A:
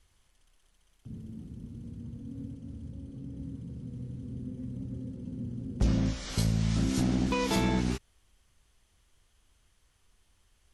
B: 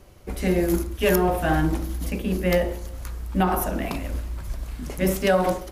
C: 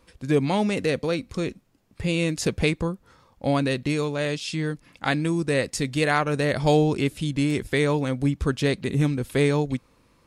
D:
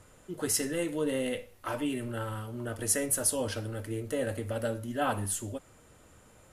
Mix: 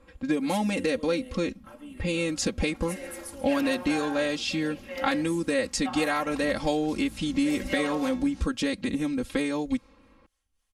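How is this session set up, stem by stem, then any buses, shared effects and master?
−11.0 dB, 0.50 s, bus A, no send, no echo send, two-band tremolo in antiphase 3.5 Hz, depth 70%, crossover 410 Hz
−13.0 dB, 2.45 s, no bus, no send, echo send −3.5 dB, three-way crossover with the lows and the highs turned down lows −23 dB, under 560 Hz, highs −14 dB, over 7,100 Hz
0.0 dB, 0.00 s, bus A, no send, no echo send, low-pass that shuts in the quiet parts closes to 2,300 Hz, open at −19 dBFS
−17.5 dB, 0.00 s, no bus, no send, echo send −15 dB, no processing
bus A: 0.0 dB, high-shelf EQ 8,700 Hz +4 dB; downward compressor 6 to 1, threshold −25 dBFS, peak gain reduction 10.5 dB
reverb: not used
echo: single-tap delay 138 ms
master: comb filter 3.7 ms, depth 95%

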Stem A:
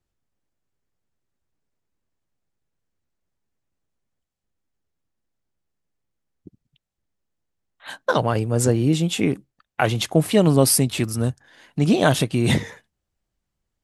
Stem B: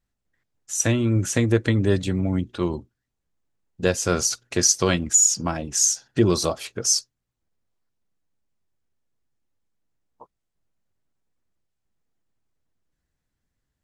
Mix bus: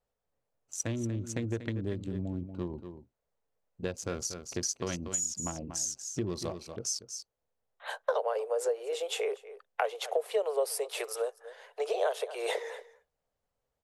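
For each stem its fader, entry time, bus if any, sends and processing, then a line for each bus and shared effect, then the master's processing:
+2.5 dB, 0.00 s, no send, echo send −22 dB, Butterworth high-pass 430 Hz 96 dB per octave; tilt shelving filter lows +9.5 dB, about 800 Hz
−9.0 dB, 0.00 s, no send, echo send −11.5 dB, adaptive Wiener filter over 25 samples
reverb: not used
echo: single-tap delay 237 ms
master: downward compressor 3 to 1, threshold −31 dBFS, peak gain reduction 15.5 dB

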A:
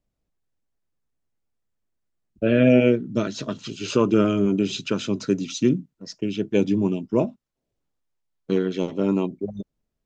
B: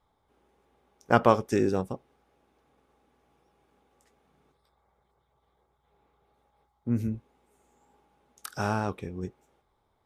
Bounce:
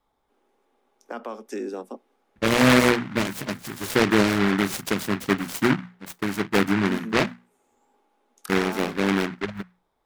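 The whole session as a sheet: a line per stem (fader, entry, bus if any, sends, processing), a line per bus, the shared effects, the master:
−0.5 dB, 0.00 s, no send, mains-hum notches 60/120/180/240 Hz; short delay modulated by noise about 1,400 Hz, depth 0.25 ms
−0.5 dB, 0.00 s, no send, Butterworth high-pass 210 Hz 96 dB per octave; downward compressor 4 to 1, threshold −27 dBFS, peak gain reduction 11 dB; brickwall limiter −22 dBFS, peak gain reduction 7 dB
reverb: not used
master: no processing

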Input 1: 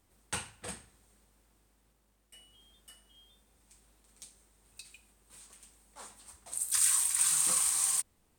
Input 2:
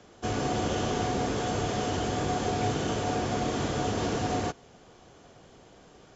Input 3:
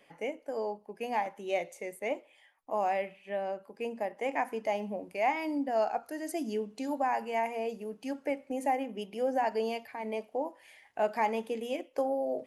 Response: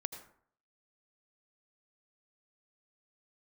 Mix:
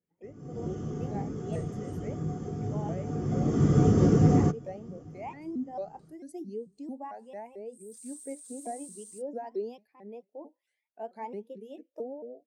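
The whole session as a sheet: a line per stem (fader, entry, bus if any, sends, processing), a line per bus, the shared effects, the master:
−8.0 dB, 1.20 s, no send, no echo send, brickwall limiter −22 dBFS, peak gain reduction 10 dB; transient designer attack −4 dB, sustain +5 dB
0:02.98 −13.5 dB → 0:03.76 −4 dB, 0.00 s, no send, echo send −19 dB, thirty-one-band graphic EQ 160 Hz +10 dB, 1,250 Hz +8 dB, 2,000 Hz +6 dB, 4,000 Hz −10 dB; automatic gain control gain up to 9 dB
−0.5 dB, 0.00 s, no send, no echo send, low-shelf EQ 460 Hz −4 dB; pitch modulation by a square or saw wave saw up 4.5 Hz, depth 250 cents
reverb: not used
echo: single-tap delay 828 ms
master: automatic gain control gain up to 4 dB; flat-topped bell 1,300 Hz −8 dB 2.7 octaves; every bin expanded away from the loudest bin 1.5 to 1

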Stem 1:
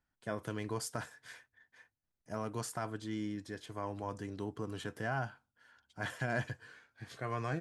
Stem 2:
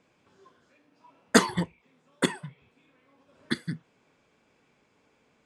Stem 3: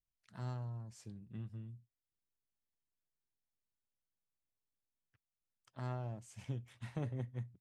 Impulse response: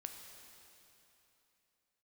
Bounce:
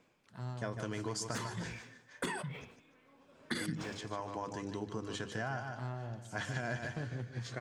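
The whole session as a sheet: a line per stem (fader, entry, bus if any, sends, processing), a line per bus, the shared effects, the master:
+2.5 dB, 0.35 s, muted 0:02.65–0:03.61, no send, echo send −8 dB, low-pass with resonance 6,500 Hz, resonance Q 1.9
−1.0 dB, 0.00 s, no send, no echo send, soft clipping −20 dBFS, distortion −5 dB; level that may fall only so fast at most 80 dB per second; automatic ducking −11 dB, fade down 0.35 s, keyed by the third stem
+1.0 dB, 0.00 s, no send, echo send −11.5 dB, no processing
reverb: not used
echo: repeating echo 149 ms, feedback 30%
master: hum removal 100.7 Hz, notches 5; downward compressor 3 to 1, threshold −35 dBFS, peak gain reduction 7 dB

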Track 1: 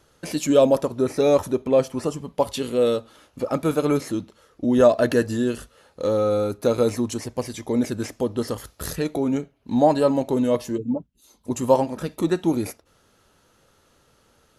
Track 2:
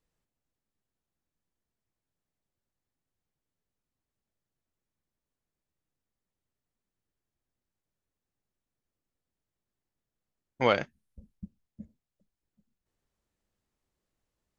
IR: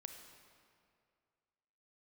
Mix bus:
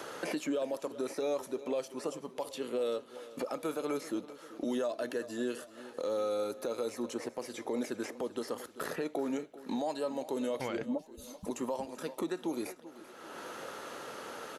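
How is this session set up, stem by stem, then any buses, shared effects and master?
−10.5 dB, 0.00 s, no send, echo send −17.5 dB, high-pass filter 340 Hz 12 dB per octave; multiband upward and downward compressor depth 100%
−5.5 dB, 0.00 s, no send, no echo send, downward compressor, threshold −25 dBFS, peak gain reduction 8 dB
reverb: not used
echo: repeating echo 387 ms, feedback 54%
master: brickwall limiter −25 dBFS, peak gain reduction 6.5 dB

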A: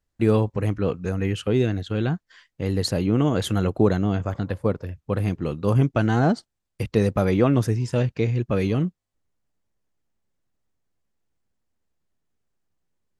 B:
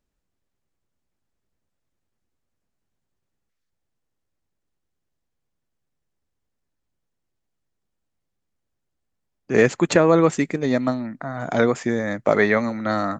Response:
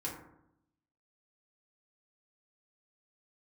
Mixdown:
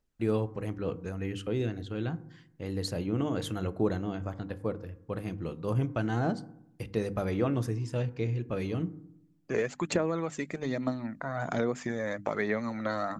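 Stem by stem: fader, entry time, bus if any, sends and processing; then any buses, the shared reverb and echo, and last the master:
−10.5 dB, 0.00 s, send −13 dB, no processing
−4.0 dB, 0.00 s, no send, downward compressor 5 to 1, threshold −24 dBFS, peak gain reduction 12.5 dB; phase shifter 1.2 Hz, delay 2.1 ms, feedback 38%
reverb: on, RT60 0.80 s, pre-delay 3 ms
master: mains-hum notches 50/100/150/200/250/300 Hz

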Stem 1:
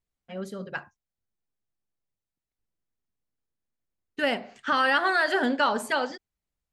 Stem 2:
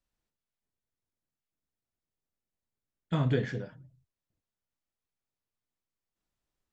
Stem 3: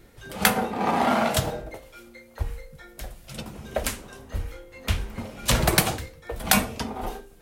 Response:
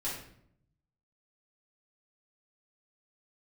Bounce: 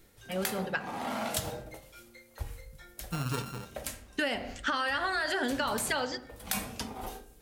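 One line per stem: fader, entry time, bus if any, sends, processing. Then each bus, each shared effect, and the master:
+2.0 dB, 0.00 s, bus A, send −15.5 dB, no processing
−5.5 dB, 0.00 s, no bus, no send, samples sorted by size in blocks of 32 samples
−10.0 dB, 0.00 s, bus A, send −13 dB, automatic ducking −12 dB, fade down 0.90 s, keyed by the first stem
bus A: 0.0 dB, high-shelf EQ 3,200 Hz +10 dB; brickwall limiter −14.5 dBFS, peak gain reduction 7 dB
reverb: on, RT60 0.65 s, pre-delay 4 ms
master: downward compressor 12 to 1, threshold −27 dBFS, peak gain reduction 10 dB

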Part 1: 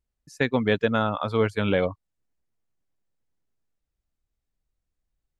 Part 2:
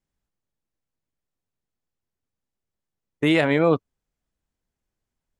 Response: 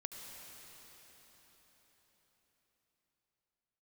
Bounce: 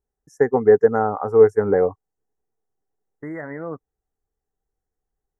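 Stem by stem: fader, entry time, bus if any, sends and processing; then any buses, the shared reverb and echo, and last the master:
−3.0 dB, 0.00 s, no send, parametric band 4,500 Hz +7.5 dB 0.26 octaves; hollow resonant body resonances 430/770 Hz, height 17 dB, ringing for 40 ms
−12.5 dB, 0.00 s, no send, high shelf with overshoot 3,000 Hz −14 dB, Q 1.5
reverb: not used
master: Chebyshev band-stop filter 2,000–5,500 Hz, order 5

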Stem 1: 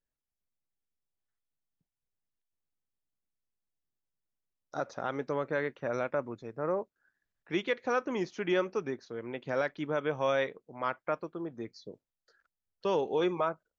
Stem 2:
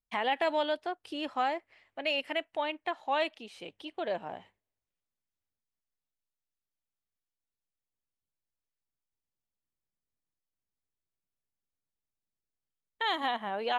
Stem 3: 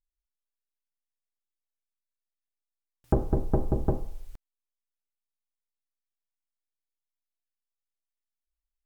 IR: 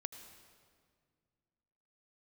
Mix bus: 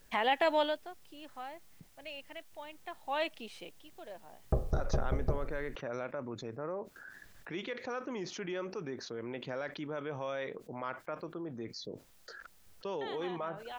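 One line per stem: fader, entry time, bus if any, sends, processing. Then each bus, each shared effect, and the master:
−11.0 dB, 0.00 s, no send, envelope flattener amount 70%
+0.5 dB, 0.00 s, no send, automatic ducking −15 dB, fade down 0.30 s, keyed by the first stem
−8.5 dB, 1.40 s, no send, comb filter 1.7 ms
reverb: not used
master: no processing

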